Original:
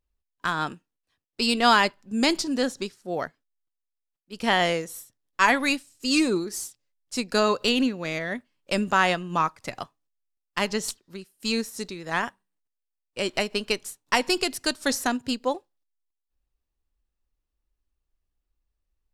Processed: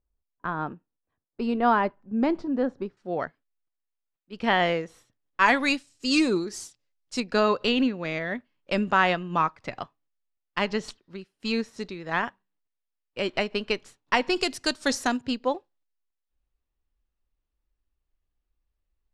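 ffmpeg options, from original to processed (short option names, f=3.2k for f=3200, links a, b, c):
-af "asetnsamples=n=441:p=0,asendcmd='2.97 lowpass f 2900;5.46 lowpass f 6200;7.2 lowpass f 3400;14.36 lowpass f 7100;15.21 lowpass f 3800',lowpass=1.1k"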